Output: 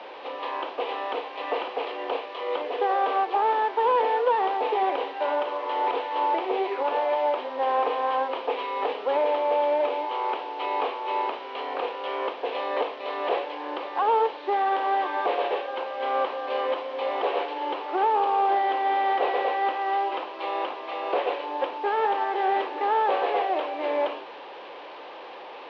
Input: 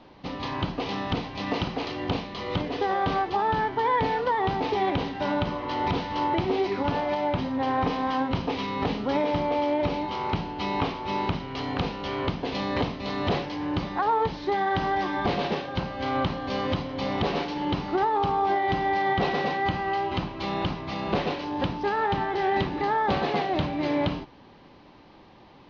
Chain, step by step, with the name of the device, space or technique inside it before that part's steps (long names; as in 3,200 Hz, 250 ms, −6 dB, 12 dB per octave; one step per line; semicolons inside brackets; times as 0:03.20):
high-pass filter 290 Hz 24 dB per octave
digital answering machine (band-pass filter 380–3,300 Hz; linear delta modulator 32 kbit/s, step −37.5 dBFS; loudspeaker in its box 420–3,300 Hz, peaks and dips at 490 Hz +6 dB, 1,400 Hz −4 dB, 2,000 Hz −5 dB)
level +3.5 dB